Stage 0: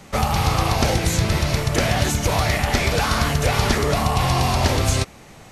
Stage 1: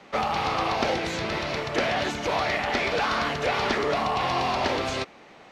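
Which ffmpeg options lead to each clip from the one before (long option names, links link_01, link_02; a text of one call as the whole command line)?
ffmpeg -i in.wav -filter_complex "[0:a]acrossover=split=230 4700:gain=0.112 1 0.0631[link_01][link_02][link_03];[link_01][link_02][link_03]amix=inputs=3:normalize=0,volume=-2.5dB" out.wav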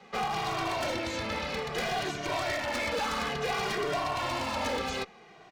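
ffmpeg -i in.wav -filter_complex "[0:a]aeval=exprs='0.0841*(abs(mod(val(0)/0.0841+3,4)-2)-1)':channel_layout=same,asplit=2[link_01][link_02];[link_02]adelay=2,afreqshift=-0.6[link_03];[link_01][link_03]amix=inputs=2:normalize=1,volume=-1dB" out.wav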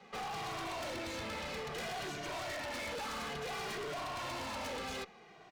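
ffmpeg -i in.wav -af "volume=34.5dB,asoftclip=hard,volume=-34.5dB,volume=-4dB" out.wav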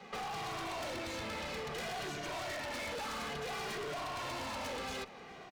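ffmpeg -i in.wav -filter_complex "[0:a]acompressor=threshold=-45dB:ratio=6,asplit=2[link_01][link_02];[link_02]adelay=414,volume=-16dB,highshelf=frequency=4000:gain=-9.32[link_03];[link_01][link_03]amix=inputs=2:normalize=0,volume=5.5dB" out.wav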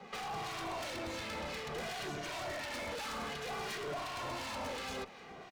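ffmpeg -i in.wav -filter_complex "[0:a]acrossover=split=1400[link_01][link_02];[link_01]aeval=exprs='val(0)*(1-0.5/2+0.5/2*cos(2*PI*2.8*n/s))':channel_layout=same[link_03];[link_02]aeval=exprs='val(0)*(1-0.5/2-0.5/2*cos(2*PI*2.8*n/s))':channel_layout=same[link_04];[link_03][link_04]amix=inputs=2:normalize=0,volume=2dB" out.wav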